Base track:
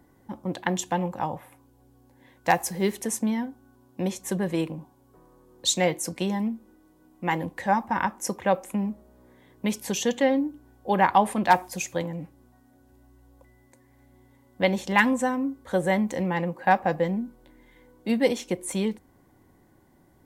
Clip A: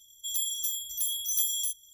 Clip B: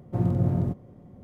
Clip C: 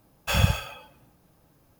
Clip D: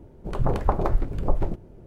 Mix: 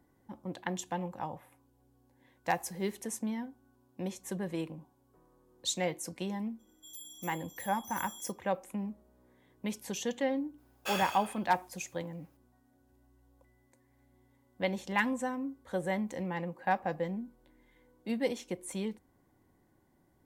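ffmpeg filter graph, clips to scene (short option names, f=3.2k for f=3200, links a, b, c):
-filter_complex "[0:a]volume=-9.5dB[a];[3:a]highpass=480[b];[1:a]atrim=end=1.93,asetpts=PTS-STARTPTS,volume=-17.5dB,afade=t=in:d=0.004:c=hsin,afade=t=out:st=1.926:d=0.004:c=hsin,adelay=6590[c];[b]atrim=end=1.79,asetpts=PTS-STARTPTS,volume=-8.5dB,afade=t=in:d=0.004:c=hsin,afade=t=out:st=1.786:d=0.004:c=hsin,adelay=466578S[d];[a][c][d]amix=inputs=3:normalize=0"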